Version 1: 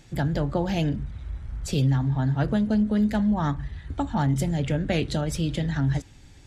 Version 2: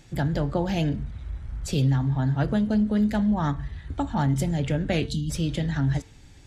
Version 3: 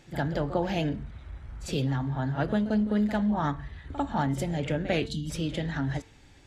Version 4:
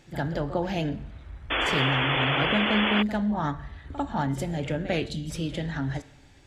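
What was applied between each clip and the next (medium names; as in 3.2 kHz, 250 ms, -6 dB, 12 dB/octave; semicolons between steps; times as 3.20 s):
spectral selection erased 5.07–5.30 s, 310–2800 Hz; de-hum 224.5 Hz, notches 29
tone controls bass -7 dB, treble -6 dB; reverse echo 48 ms -13.5 dB
reverberation RT60 1.1 s, pre-delay 30 ms, DRR 17.5 dB; painted sound noise, 1.50–3.03 s, 240–3500 Hz -26 dBFS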